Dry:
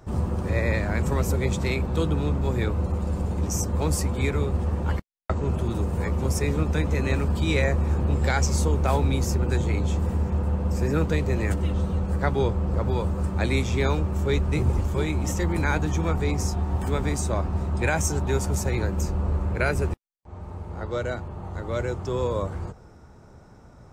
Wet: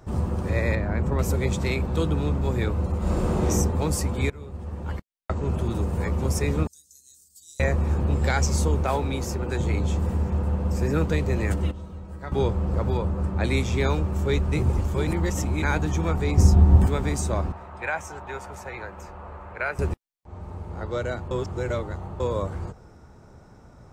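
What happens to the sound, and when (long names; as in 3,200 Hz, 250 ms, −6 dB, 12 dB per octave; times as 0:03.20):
0:00.75–0:01.19: low-pass filter 1,300 Hz 6 dB per octave
0:02.98–0:03.47: thrown reverb, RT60 1.3 s, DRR −8 dB
0:04.30–0:05.59: fade in, from −19.5 dB
0:06.67–0:07.60: inverse Chebyshev high-pass filter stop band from 2,500 Hz, stop band 50 dB
0:08.83–0:09.59: bass and treble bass −6 dB, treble −3 dB
0:11.71–0:12.32: tuned comb filter 320 Hz, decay 0.33 s, mix 80%
0:12.97–0:13.44: high-shelf EQ 4,200 Hz −11 dB
0:15.07–0:15.62: reverse
0:16.37–0:16.87: low-shelf EQ 410 Hz +12 dB
0:17.52–0:19.79: three-way crossover with the lows and the highs turned down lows −18 dB, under 590 Hz, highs −16 dB, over 2,700 Hz
0:21.31–0:22.20: reverse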